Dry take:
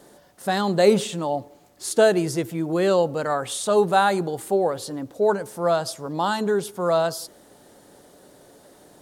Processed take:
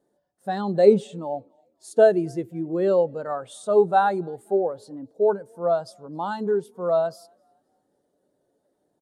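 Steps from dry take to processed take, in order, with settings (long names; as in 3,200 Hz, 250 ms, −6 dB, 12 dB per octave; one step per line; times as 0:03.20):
echo with shifted repeats 263 ms, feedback 48%, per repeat +32 Hz, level −23 dB
every bin expanded away from the loudest bin 1.5 to 1
level +1.5 dB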